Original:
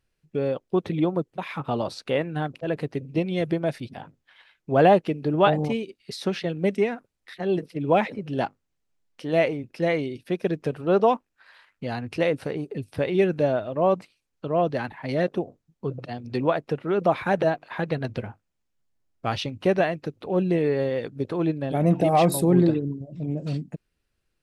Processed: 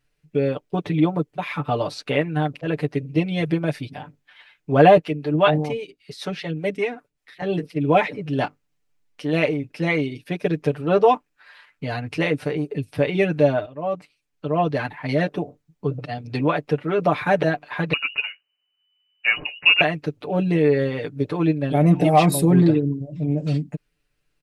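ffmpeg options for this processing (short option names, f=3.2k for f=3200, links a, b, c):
-filter_complex "[0:a]asettb=1/sr,asplit=3[a][b][c];[a]atrim=end=4.974[d];[b]atrim=start=4.97:end=7.42,asetpts=PTS-STARTPTS,afade=t=in:d=0.004:c=qsin,afade=t=out:st=2.446:d=0.004:c=qsin,acrossover=split=510[e][f];[e]aeval=exprs='val(0)*(1-0.7/2+0.7/2*cos(2*PI*5.1*n/s))':c=same[g];[f]aeval=exprs='val(0)*(1-0.7/2-0.7/2*cos(2*PI*5.1*n/s))':c=same[h];[g][h]amix=inputs=2:normalize=0[i];[c]atrim=start=7.416[j];[d][i]acrossfade=d=0.004:c1=hsin:c2=qsin[k];[k][j]acrossfade=d=0.004:c1=qsin:c2=hsin,asettb=1/sr,asplit=3[l][m][n];[l]atrim=end=17.934[o];[m]atrim=start=17.93:end=19.81,asetpts=PTS-STARTPTS,afade=t=in:d=0.004:c=qsin,afade=t=out:st=1.876:d=0.004:c=qsin,lowpass=f=2.6k:t=q:w=0.5098,lowpass=f=2.6k:t=q:w=0.6013,lowpass=f=2.6k:t=q:w=0.9,lowpass=f=2.6k:t=q:w=2.563,afreqshift=-3000[p];[n]atrim=start=19.806[q];[o][p]acrossfade=d=0.004:c1=hsin:c2=qsin[r];[r][q]acrossfade=d=0.004:c1=qsin:c2=hsin,asplit=2[s][t];[s]atrim=end=13.66,asetpts=PTS-STARTPTS,afade=t=out:st=13.656:d=0.004:c=hsin:silence=0.177828[u];[t]atrim=start=13.66,asetpts=PTS-STARTPTS,afade=t=in:d=0.98:silence=0.177828[v];[u][v]concat=n=2:v=0:a=1,equalizer=f=2.3k:t=o:w=0.69:g=3.5,aecho=1:1:6.8:0.85,volume=1dB"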